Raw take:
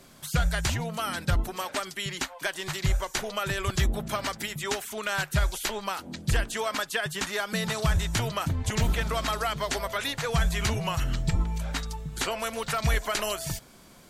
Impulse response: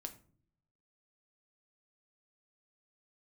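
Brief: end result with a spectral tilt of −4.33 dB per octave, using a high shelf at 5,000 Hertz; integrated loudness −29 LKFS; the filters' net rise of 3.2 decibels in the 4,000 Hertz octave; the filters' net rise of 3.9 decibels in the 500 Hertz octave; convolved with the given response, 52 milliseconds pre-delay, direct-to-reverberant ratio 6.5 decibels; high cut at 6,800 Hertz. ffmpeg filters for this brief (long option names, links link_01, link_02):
-filter_complex "[0:a]lowpass=6800,equalizer=frequency=500:width_type=o:gain=5,equalizer=frequency=4000:width_type=o:gain=6,highshelf=frequency=5000:gain=-3.5,asplit=2[link_01][link_02];[1:a]atrim=start_sample=2205,adelay=52[link_03];[link_02][link_03]afir=irnorm=-1:irlink=0,volume=-2.5dB[link_04];[link_01][link_04]amix=inputs=2:normalize=0,volume=-2dB"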